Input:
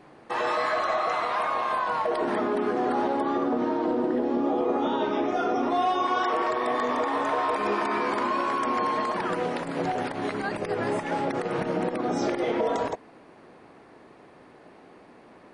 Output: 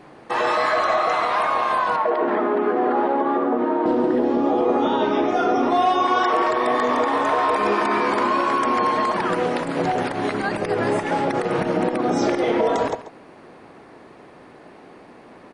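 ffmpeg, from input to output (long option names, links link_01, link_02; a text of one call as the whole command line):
ffmpeg -i in.wav -filter_complex "[0:a]asettb=1/sr,asplit=3[link_01][link_02][link_03];[link_01]atrim=end=1.964[link_04];[link_02]atrim=start=1.96:end=3.86,asetpts=PTS-STARTPTS,afade=type=in:duration=0.004:curve=qsin,afade=type=out:start_time=1.896:duration=0.004:curve=qsin,highpass=240,lowpass=2200[link_05];[link_03]atrim=start=3.856[link_06];[link_04][link_05]acrossfade=duration=0.004:curve1=hsin:curve2=qsin[link_07];[link_07][link_06]acrossfade=duration=0.004:curve1=qsin:curve2=hsin,asplit=2[link_08][link_09];[link_09]aecho=0:1:138:0.188[link_10];[link_08][link_10]amix=inputs=2:normalize=0,volume=6dB" out.wav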